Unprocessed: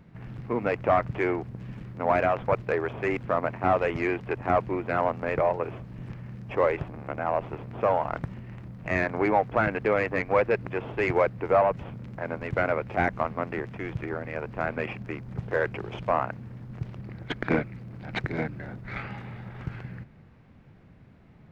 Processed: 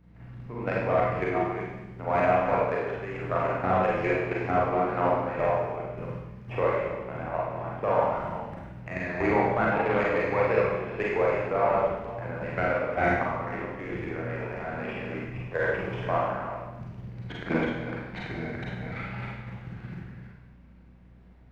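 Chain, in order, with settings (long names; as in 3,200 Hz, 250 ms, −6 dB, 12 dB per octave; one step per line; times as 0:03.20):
delay that plays each chunk backwards 233 ms, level −4.5 dB
output level in coarse steps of 12 dB
mains hum 60 Hz, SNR 26 dB
four-comb reverb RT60 0.94 s, combs from 33 ms, DRR −4.5 dB
0:09.71–0:10.24: saturating transformer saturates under 660 Hz
level −3 dB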